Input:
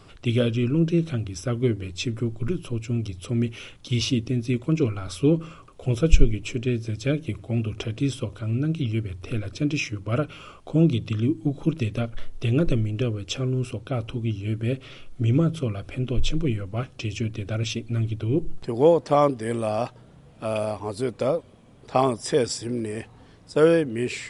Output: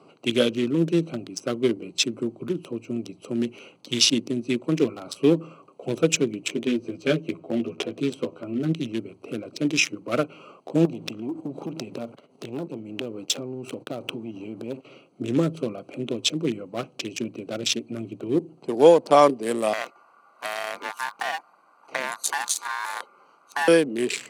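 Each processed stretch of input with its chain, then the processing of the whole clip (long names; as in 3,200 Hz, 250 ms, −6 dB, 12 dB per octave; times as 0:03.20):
0:06.48–0:08.73: high-shelf EQ 6,200 Hz −10.5 dB + double-tracking delay 12 ms −2.5 dB
0:10.85–0:14.85: downward expander −37 dBFS + leveller curve on the samples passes 2 + downward compressor 16 to 1, threshold −27 dBFS
0:19.73–0:23.68: high-shelf EQ 9,800 Hz +12 dB + downward compressor 4 to 1, threshold −25 dBFS + ring modulation 1,300 Hz
whole clip: adaptive Wiener filter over 25 samples; Bessel high-pass filter 270 Hz, order 8; high-shelf EQ 3,300 Hz +11.5 dB; level +4 dB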